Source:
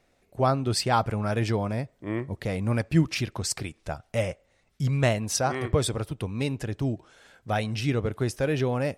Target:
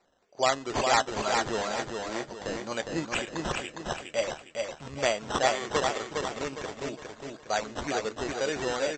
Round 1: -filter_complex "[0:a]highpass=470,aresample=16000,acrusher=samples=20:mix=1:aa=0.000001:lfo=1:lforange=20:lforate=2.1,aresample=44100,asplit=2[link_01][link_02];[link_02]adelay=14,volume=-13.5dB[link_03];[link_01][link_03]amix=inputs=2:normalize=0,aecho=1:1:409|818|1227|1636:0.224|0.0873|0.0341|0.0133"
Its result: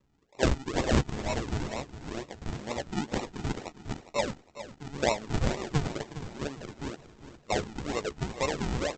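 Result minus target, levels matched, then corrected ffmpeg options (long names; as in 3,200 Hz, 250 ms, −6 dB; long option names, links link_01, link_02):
sample-and-hold swept by an LFO: distortion +21 dB; echo-to-direct −9 dB
-filter_complex "[0:a]highpass=470,aresample=16000,acrusher=samples=5:mix=1:aa=0.000001:lfo=1:lforange=5:lforate=2.1,aresample=44100,asplit=2[link_01][link_02];[link_02]adelay=14,volume=-13.5dB[link_03];[link_01][link_03]amix=inputs=2:normalize=0,aecho=1:1:409|818|1227|1636|2045:0.631|0.246|0.096|0.0374|0.0146"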